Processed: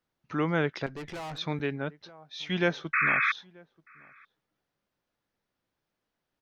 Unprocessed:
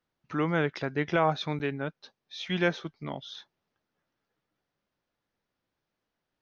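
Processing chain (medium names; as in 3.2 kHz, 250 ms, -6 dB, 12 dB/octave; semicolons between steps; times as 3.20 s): 2.93–3.32 s: painted sound noise 1.1–2.6 kHz -25 dBFS; echo from a far wall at 160 m, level -26 dB; 0.86–1.38 s: valve stage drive 36 dB, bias 0.5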